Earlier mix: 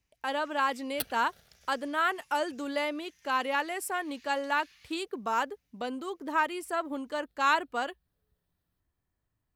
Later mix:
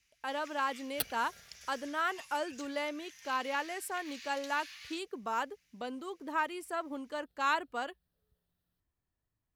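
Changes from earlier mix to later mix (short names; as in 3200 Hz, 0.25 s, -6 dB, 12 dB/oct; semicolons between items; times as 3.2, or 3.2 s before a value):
speech -5.0 dB; first sound +10.5 dB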